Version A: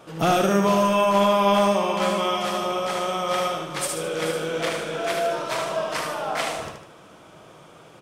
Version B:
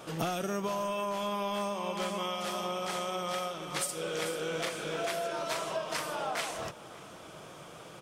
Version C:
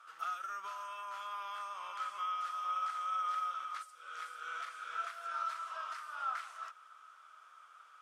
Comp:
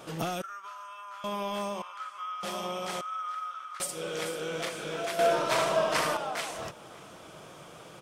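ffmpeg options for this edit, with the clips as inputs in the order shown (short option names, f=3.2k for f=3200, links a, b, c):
-filter_complex "[2:a]asplit=3[a][b][c];[1:a]asplit=5[d][e][f][g][h];[d]atrim=end=0.422[i];[a]atrim=start=0.418:end=1.242[j];[e]atrim=start=1.238:end=1.822[k];[b]atrim=start=1.818:end=2.432[l];[f]atrim=start=2.428:end=3.012[m];[c]atrim=start=3.008:end=3.802[n];[g]atrim=start=3.798:end=5.192[o];[0:a]atrim=start=5.188:end=6.172[p];[h]atrim=start=6.168[q];[i][j]acrossfade=d=0.004:c1=hsin:c2=hsin[r];[r][k]acrossfade=d=0.004:c1=hsin:c2=hsin[s];[s][l]acrossfade=d=0.004:c1=hsin:c2=hsin[t];[t][m]acrossfade=d=0.004:c1=hsin:c2=hsin[u];[u][n]acrossfade=d=0.004:c1=hsin:c2=hsin[v];[v][o]acrossfade=d=0.004:c1=hsin:c2=hsin[w];[w][p]acrossfade=d=0.004:c1=hsin:c2=hsin[x];[x][q]acrossfade=d=0.004:c1=hsin:c2=hsin"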